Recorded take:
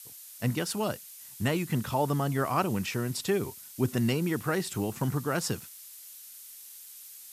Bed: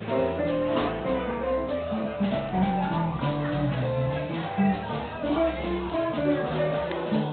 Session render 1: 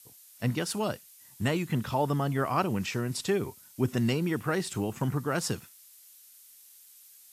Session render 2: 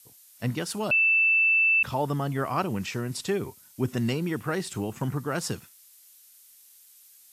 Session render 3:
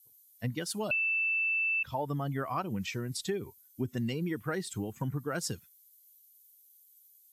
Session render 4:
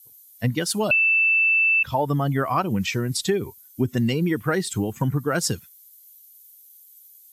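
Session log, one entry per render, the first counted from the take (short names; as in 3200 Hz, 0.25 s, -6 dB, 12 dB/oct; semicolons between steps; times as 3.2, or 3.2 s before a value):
noise print and reduce 7 dB
0.91–1.83 bleep 2650 Hz -18 dBFS
per-bin expansion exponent 1.5; compressor, threshold -29 dBFS, peak gain reduction 8.5 dB
gain +11 dB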